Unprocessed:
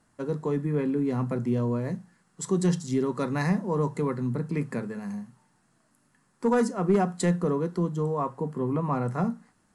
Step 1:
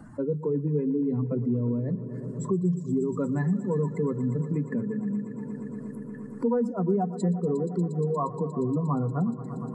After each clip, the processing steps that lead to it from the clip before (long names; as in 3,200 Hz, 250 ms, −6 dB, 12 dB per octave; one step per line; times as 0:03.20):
expanding power law on the bin magnitudes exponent 2
echo machine with several playback heads 118 ms, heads all three, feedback 72%, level −21 dB
multiband upward and downward compressor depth 70%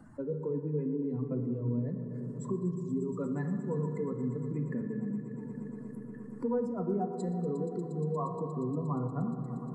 hum removal 57.47 Hz, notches 3
on a send at −5.5 dB: convolution reverb RT60 2.6 s, pre-delay 4 ms
on the sum: level −7.5 dB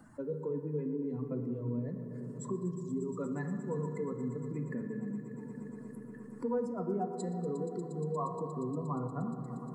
spectral tilt +1.5 dB per octave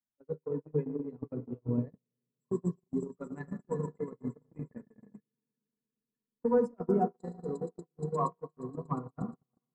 noise gate −33 dBFS, range −54 dB
level +7.5 dB